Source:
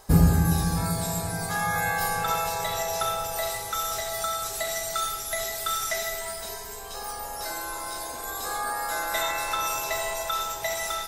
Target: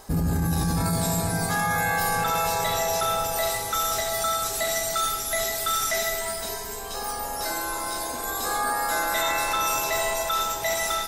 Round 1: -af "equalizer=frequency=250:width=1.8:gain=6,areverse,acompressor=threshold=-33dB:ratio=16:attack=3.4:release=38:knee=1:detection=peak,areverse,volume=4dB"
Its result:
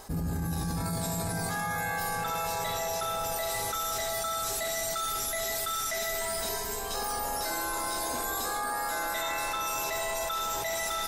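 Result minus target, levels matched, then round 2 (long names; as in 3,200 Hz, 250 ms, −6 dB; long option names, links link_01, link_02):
downward compressor: peak gain reduction +7.5 dB
-af "equalizer=frequency=250:width=1.8:gain=6,areverse,acompressor=threshold=-25dB:ratio=16:attack=3.4:release=38:knee=1:detection=peak,areverse,volume=4dB"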